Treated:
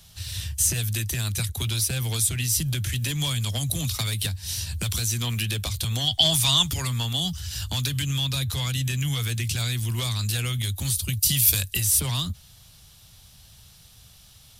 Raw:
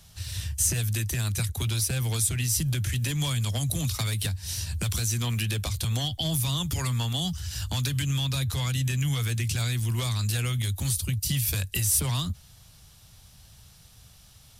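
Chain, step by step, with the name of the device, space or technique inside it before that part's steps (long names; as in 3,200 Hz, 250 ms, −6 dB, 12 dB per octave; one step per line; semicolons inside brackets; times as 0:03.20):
presence and air boost (parametric band 3,500 Hz +4.5 dB 1 octave; high-shelf EQ 11,000 Hz +6 dB)
0:06.08–0:06.71: gain on a spectral selection 620–9,800 Hz +8 dB
0:11.08–0:11.73: high-shelf EQ 4,100 Hz +7.5 dB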